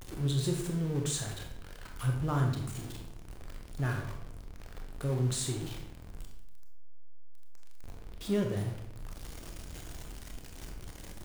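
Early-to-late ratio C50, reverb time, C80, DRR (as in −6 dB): 5.5 dB, 0.70 s, 8.5 dB, 2.0 dB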